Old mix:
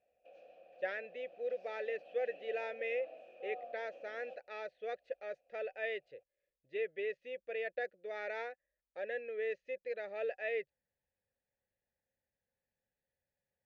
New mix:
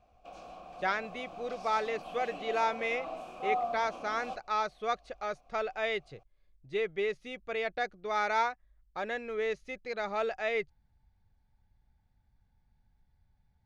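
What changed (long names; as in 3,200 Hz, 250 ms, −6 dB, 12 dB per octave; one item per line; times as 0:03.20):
speech −4.5 dB
master: remove formant filter e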